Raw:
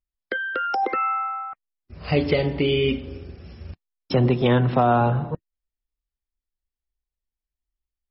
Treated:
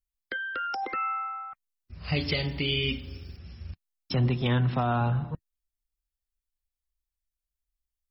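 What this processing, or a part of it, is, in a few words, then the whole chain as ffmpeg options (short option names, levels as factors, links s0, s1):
smiley-face EQ: -filter_complex "[0:a]lowshelf=f=140:g=4.5,equalizer=f=470:t=o:w=1.7:g=-8.5,highshelf=f=5000:g=7.5,asplit=3[s0][s1][s2];[s0]afade=t=out:st=2.14:d=0.02[s3];[s1]aemphasis=mode=production:type=75fm,afade=t=in:st=2.14:d=0.02,afade=t=out:st=3.36:d=0.02[s4];[s2]afade=t=in:st=3.36:d=0.02[s5];[s3][s4][s5]amix=inputs=3:normalize=0,volume=0.562"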